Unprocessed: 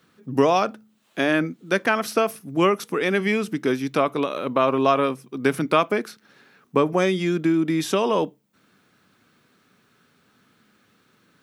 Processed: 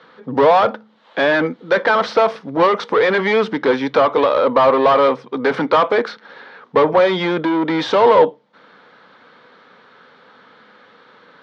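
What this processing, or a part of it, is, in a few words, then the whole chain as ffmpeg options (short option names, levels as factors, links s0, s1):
overdrive pedal into a guitar cabinet: -filter_complex "[0:a]asplit=2[s0][s1];[s1]highpass=f=720:p=1,volume=20,asoftclip=type=tanh:threshold=0.596[s2];[s0][s2]amix=inputs=2:normalize=0,lowpass=f=7600:p=1,volume=0.501,highpass=94,equalizer=f=350:t=q:w=4:g=-4,equalizer=f=500:t=q:w=4:g=10,equalizer=f=910:t=q:w=4:g=7,equalizer=f=2600:t=q:w=4:g=-9,lowpass=f=3800:w=0.5412,lowpass=f=3800:w=1.3066,volume=0.668"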